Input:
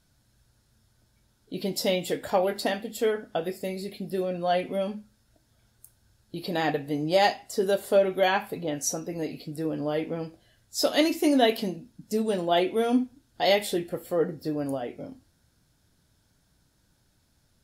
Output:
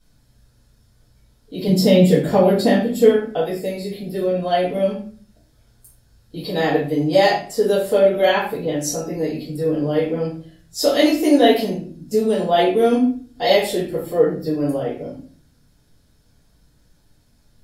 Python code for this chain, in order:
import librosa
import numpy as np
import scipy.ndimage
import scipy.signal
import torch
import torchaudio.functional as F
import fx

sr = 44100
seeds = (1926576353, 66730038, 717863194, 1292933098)

y = fx.peak_eq(x, sr, hz=170.0, db=13.0, octaves=1.6, at=(1.67, 3.08))
y = fx.room_shoebox(y, sr, seeds[0], volume_m3=36.0, walls='mixed', distance_m=1.8)
y = y * librosa.db_to_amplitude(-4.0)